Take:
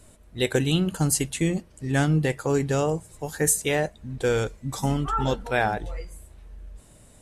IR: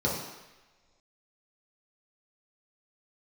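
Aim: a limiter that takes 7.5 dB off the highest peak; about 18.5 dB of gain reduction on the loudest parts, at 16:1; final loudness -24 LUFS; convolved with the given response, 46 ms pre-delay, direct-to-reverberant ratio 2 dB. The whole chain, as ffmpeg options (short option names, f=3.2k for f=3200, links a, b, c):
-filter_complex "[0:a]acompressor=threshold=-36dB:ratio=16,alimiter=level_in=8dB:limit=-24dB:level=0:latency=1,volume=-8dB,asplit=2[a][b];[1:a]atrim=start_sample=2205,adelay=46[c];[b][c]afir=irnorm=-1:irlink=0,volume=-12.5dB[d];[a][d]amix=inputs=2:normalize=0,volume=14dB"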